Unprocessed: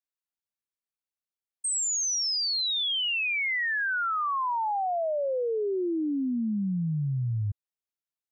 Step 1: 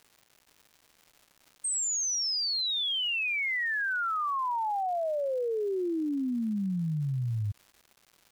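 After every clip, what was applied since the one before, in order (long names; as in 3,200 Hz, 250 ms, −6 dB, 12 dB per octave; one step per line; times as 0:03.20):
surface crackle 330 per second −44 dBFS
level −2 dB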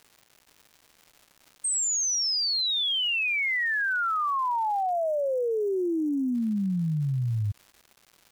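time-frequency box erased 0:04.91–0:06.34, 990–5,500 Hz
level +3.5 dB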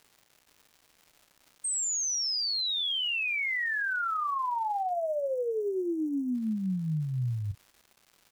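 double-tracking delay 32 ms −12 dB
level −4 dB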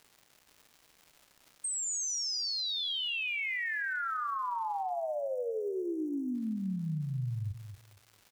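downward compressor 2 to 1, threshold −36 dBFS, peak gain reduction 5 dB
repeating echo 230 ms, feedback 20%, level −10 dB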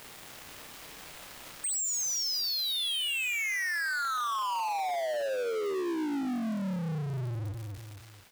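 fade-out on the ending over 2.24 s
power curve on the samples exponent 0.35
level −1 dB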